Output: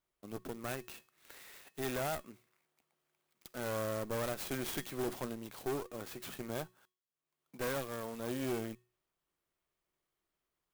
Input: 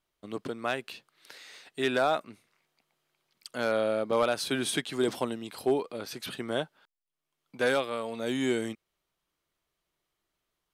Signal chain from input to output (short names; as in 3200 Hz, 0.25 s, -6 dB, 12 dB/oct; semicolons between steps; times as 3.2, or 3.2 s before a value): notches 60/120/180 Hz; one-sided clip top -42.5 dBFS, bottom -22.5 dBFS; resonator 370 Hz, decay 0.41 s, harmonics odd, mix 60%; clock jitter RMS 0.054 ms; gain +3 dB